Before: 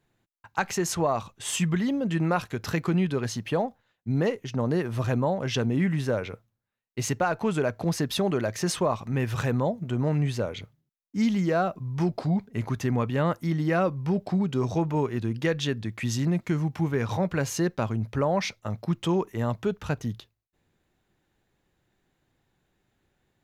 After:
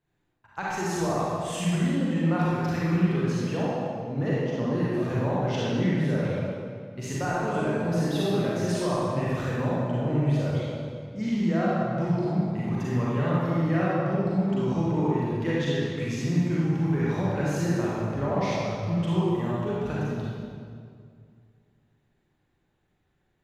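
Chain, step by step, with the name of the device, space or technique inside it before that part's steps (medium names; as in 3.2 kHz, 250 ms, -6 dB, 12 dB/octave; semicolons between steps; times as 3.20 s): swimming-pool hall (reverberation RT60 2.2 s, pre-delay 35 ms, DRR -8 dB; treble shelf 5.3 kHz -7 dB); trim -8.5 dB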